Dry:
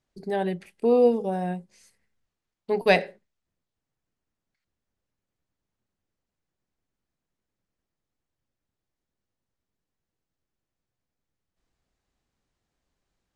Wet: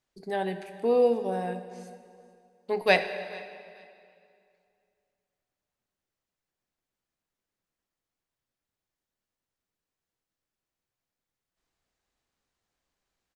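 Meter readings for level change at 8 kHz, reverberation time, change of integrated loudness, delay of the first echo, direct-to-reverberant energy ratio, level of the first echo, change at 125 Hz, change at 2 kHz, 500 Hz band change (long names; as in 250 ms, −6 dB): can't be measured, 2.3 s, −3.5 dB, 439 ms, 9.0 dB, −22.0 dB, −6.0 dB, 0.0 dB, −2.5 dB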